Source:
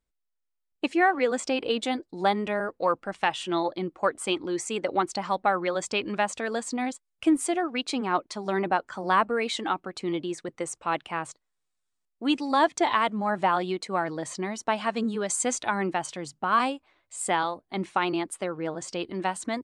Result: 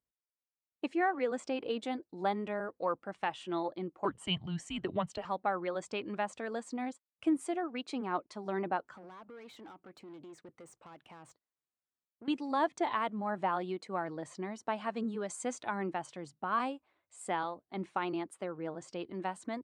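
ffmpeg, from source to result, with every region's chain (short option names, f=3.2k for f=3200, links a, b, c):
-filter_complex "[0:a]asettb=1/sr,asplit=3[a][b][c];[a]atrim=end=4.054[d];[b]atrim=start=4.05:end=5.25,asetpts=PTS-STARTPTS,afade=t=in:d=0.004:c=qsin,afade=t=out:st=1.196:d=0.004:c=qsin,equalizer=f=3.2k:t=o:w=0.22:g=13.5,afreqshift=-180[e];[c]atrim=start=5.246[f];[d][e]acrossfade=d=0.004:c1=hsin:c2=qsin[g];[g][f]acrossfade=d=0.004:c1=qsin:c2=hsin,asettb=1/sr,asplit=3[h][i][j];[h]atrim=end=8.914[k];[i]atrim=start=8.91:end=12.28,asetpts=PTS-STARTPTS,afade=t=in:d=0.004:c=qsin,afade=t=out:st=3.366:d=0.004:c=qsin,acompressor=threshold=-33dB:ratio=8:attack=3.2:release=140:knee=1:detection=peak,aeval=exprs='(tanh(79.4*val(0)+0.25)-tanh(0.25))/79.4':c=same[l];[j]atrim=start=12.276[m];[k][l]acrossfade=d=0.004:c1=hsin:c2=qsin[n];[n][m]acrossfade=d=0.004:c1=qsin:c2=hsin,highpass=82,highshelf=f=2.4k:g=-9,volume=-7.5dB"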